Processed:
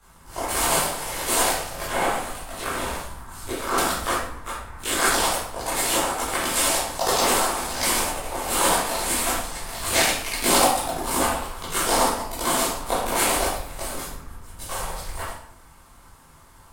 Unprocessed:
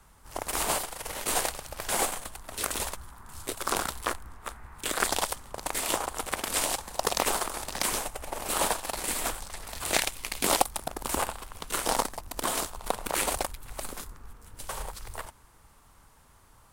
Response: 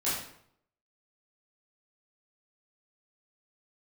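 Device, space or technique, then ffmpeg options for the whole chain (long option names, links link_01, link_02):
bathroom: -filter_complex "[1:a]atrim=start_sample=2205[link_01];[0:a][link_01]afir=irnorm=-1:irlink=0,asettb=1/sr,asplit=3[link_02][link_03][link_04];[link_02]atrim=end=1.874[link_05];[link_03]atrim=start=1.87:end=3.78,asetpts=PTS-STARTPTS,afade=type=in:duration=0.004:curve=qsin,afade=type=out:start_time=1.906:duration=0.004:curve=qsin,acrossover=split=2900[link_06][link_07];[link_07]acompressor=threshold=-35dB:ratio=4:attack=1:release=60[link_08];[link_06][link_08]amix=inputs=2:normalize=0[link_09];[link_04]atrim=start=3.776[link_10];[link_05][link_09]acrossfade=duration=0.004:curve1=hsin:curve2=qsin[link_11];[link_11][link_10]acrossfade=duration=0.004:curve1=qsin:curve2=hsin"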